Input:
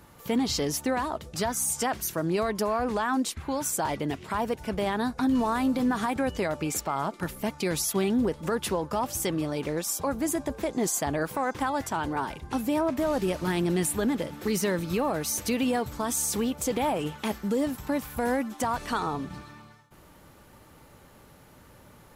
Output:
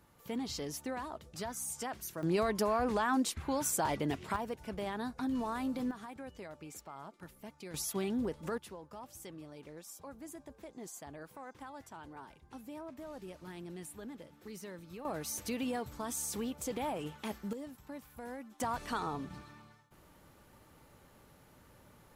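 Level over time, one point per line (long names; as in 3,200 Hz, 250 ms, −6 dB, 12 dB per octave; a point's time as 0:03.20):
−12 dB
from 0:02.23 −4 dB
from 0:04.36 −10.5 dB
from 0:05.91 −19 dB
from 0:07.74 −9.5 dB
from 0:08.58 −20 dB
from 0:15.05 −10 dB
from 0:17.53 −18 dB
from 0:18.60 −7.5 dB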